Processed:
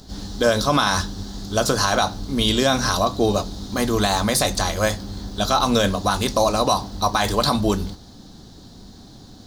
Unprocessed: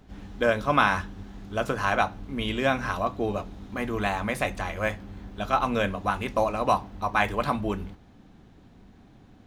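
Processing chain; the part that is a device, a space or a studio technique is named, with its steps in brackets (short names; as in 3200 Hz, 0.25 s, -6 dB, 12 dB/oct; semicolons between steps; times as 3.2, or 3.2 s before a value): over-bright horn tweeter (resonant high shelf 3300 Hz +10.5 dB, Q 3; limiter -16.5 dBFS, peak gain reduction 10 dB); gain +9 dB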